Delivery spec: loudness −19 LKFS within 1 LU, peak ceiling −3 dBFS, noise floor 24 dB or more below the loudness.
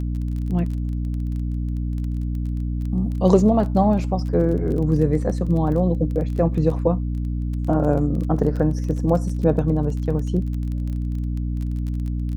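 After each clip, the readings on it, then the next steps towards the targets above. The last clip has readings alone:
crackle rate 21 per second; mains hum 60 Hz; hum harmonics up to 300 Hz; level of the hum −22 dBFS; integrated loudness −22.0 LKFS; sample peak −2.5 dBFS; target loudness −19.0 LKFS
→ click removal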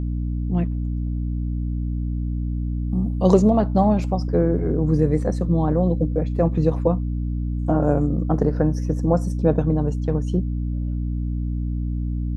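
crackle rate 0 per second; mains hum 60 Hz; hum harmonics up to 300 Hz; level of the hum −22 dBFS
→ hum removal 60 Hz, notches 5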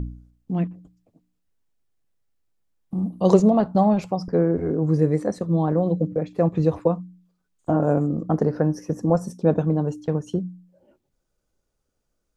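mains hum none found; integrated loudness −22.5 LKFS; sample peak −2.5 dBFS; target loudness −19.0 LKFS
→ level +3.5 dB
brickwall limiter −3 dBFS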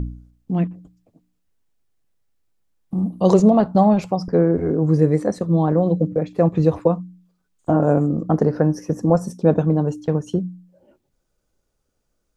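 integrated loudness −19.0 LKFS; sample peak −3.0 dBFS; background noise floor −72 dBFS

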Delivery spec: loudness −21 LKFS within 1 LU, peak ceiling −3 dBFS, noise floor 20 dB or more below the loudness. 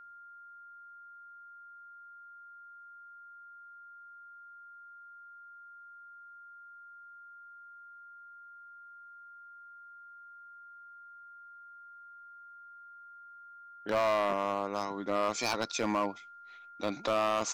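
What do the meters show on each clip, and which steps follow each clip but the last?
share of clipped samples 0.6%; peaks flattened at −23.0 dBFS; interfering tone 1,400 Hz; level of the tone −49 dBFS; integrated loudness −32.0 LKFS; sample peak −23.0 dBFS; target loudness −21.0 LKFS
→ clipped peaks rebuilt −23 dBFS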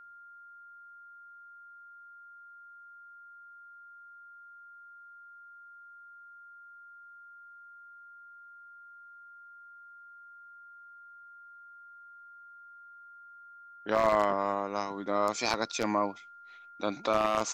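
share of clipped samples 0.0%; interfering tone 1,400 Hz; level of the tone −49 dBFS
→ notch filter 1,400 Hz, Q 30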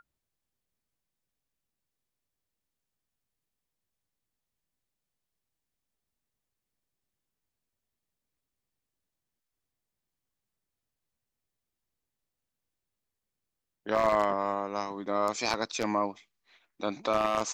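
interfering tone none found; integrated loudness −30.0 LKFS; sample peak −13.5 dBFS; target loudness −21.0 LKFS
→ level +9 dB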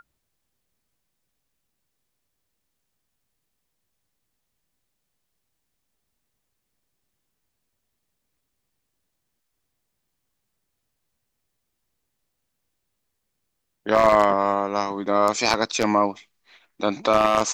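integrated loudness −21.0 LKFS; sample peak −4.5 dBFS; background noise floor −78 dBFS

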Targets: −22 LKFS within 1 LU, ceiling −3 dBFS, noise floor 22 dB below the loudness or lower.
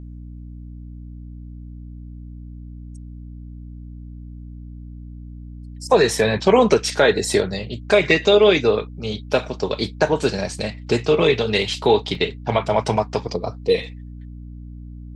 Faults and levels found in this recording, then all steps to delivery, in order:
number of dropouts 2; longest dropout 1.8 ms; mains hum 60 Hz; hum harmonics up to 300 Hz; level of the hum −33 dBFS; integrated loudness −19.0 LKFS; sample peak −2.0 dBFS; target loudness −22.0 LKFS
→ repair the gap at 0:08.11/0:12.15, 1.8 ms
hum removal 60 Hz, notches 5
level −3 dB

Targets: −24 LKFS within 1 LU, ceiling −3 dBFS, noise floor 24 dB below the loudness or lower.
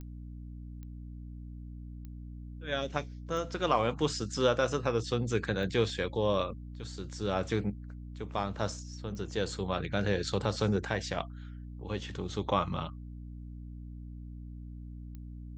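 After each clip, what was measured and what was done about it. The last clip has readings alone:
number of clicks 7; mains hum 60 Hz; hum harmonics up to 300 Hz; level of the hum −41 dBFS; integrated loudness −33.0 LKFS; sample peak −13.0 dBFS; target loudness −24.0 LKFS
→ click removal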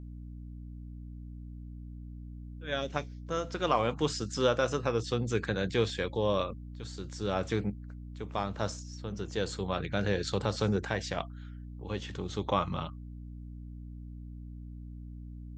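number of clicks 0; mains hum 60 Hz; hum harmonics up to 300 Hz; level of the hum −41 dBFS
→ hum removal 60 Hz, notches 5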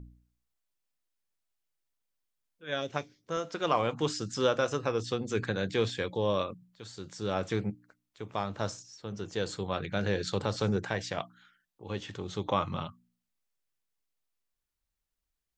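mains hum none found; integrated loudness −33.0 LKFS; sample peak −13.5 dBFS; target loudness −24.0 LKFS
→ level +9 dB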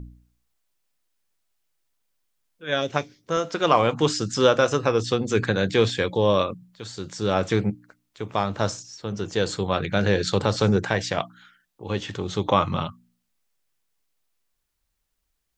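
integrated loudness −24.0 LKFS; sample peak −4.5 dBFS; background noise floor −77 dBFS

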